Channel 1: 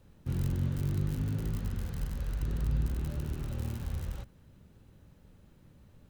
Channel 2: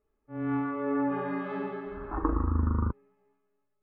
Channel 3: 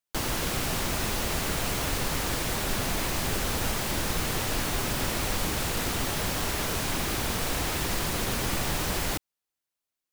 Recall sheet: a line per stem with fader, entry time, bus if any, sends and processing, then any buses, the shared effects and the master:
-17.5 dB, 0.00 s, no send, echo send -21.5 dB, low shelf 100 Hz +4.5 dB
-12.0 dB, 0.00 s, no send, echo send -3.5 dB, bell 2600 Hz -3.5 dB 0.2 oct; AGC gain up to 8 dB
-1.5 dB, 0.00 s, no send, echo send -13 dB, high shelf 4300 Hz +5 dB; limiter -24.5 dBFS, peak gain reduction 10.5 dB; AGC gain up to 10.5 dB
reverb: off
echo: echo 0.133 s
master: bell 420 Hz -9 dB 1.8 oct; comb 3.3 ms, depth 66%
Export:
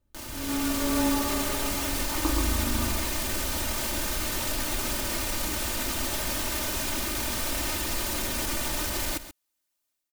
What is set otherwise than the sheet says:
stem 3 -1.5 dB -> -8.0 dB; master: missing bell 420 Hz -9 dB 1.8 oct

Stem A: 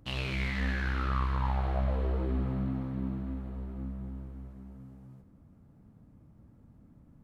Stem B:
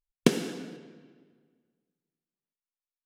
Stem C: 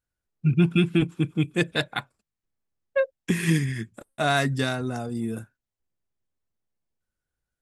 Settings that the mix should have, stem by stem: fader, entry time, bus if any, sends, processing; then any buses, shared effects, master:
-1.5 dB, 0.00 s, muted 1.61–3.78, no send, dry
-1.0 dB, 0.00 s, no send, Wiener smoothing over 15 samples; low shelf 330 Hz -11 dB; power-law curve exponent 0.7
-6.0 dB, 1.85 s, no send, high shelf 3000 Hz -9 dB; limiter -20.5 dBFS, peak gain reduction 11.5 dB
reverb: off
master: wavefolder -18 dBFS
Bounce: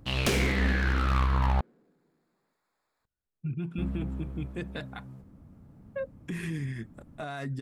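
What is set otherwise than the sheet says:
stem A -1.5 dB -> +5.0 dB; stem C: entry 1.85 s -> 3.00 s

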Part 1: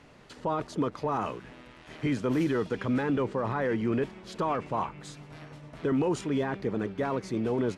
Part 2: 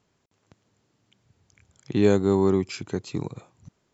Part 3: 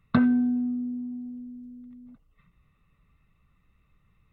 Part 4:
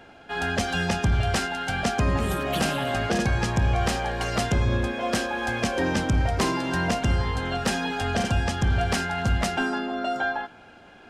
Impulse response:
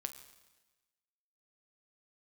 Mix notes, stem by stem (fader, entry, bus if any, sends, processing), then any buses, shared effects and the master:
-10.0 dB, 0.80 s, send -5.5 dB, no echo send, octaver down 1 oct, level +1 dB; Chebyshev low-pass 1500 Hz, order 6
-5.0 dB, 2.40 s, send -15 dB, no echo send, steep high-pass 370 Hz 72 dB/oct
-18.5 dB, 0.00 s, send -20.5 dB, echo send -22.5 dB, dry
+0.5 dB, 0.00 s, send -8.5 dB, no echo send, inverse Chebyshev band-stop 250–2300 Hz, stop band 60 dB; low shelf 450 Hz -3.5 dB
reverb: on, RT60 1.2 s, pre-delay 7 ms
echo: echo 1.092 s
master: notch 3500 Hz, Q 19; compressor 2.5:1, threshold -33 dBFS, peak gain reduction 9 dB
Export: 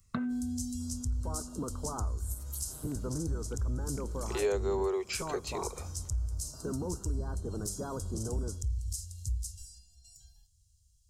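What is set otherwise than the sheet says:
stem 2 -5.0 dB -> +2.5 dB; stem 3 -18.5 dB -> -8.5 dB

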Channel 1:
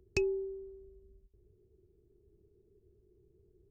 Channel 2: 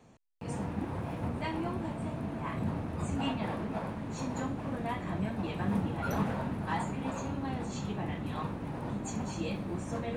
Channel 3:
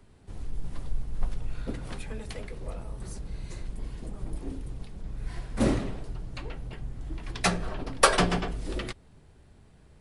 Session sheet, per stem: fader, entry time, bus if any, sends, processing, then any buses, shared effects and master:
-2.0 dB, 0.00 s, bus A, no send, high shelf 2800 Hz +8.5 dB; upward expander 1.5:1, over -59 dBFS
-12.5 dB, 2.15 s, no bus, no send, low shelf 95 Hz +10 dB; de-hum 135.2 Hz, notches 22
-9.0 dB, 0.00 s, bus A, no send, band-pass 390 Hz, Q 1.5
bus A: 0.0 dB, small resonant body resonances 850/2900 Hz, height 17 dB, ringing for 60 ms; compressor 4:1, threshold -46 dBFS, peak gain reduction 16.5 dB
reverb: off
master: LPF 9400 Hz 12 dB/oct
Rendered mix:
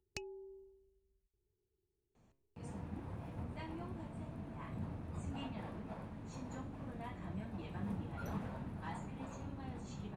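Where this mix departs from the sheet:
stem 3: muted; master: missing LPF 9400 Hz 12 dB/oct

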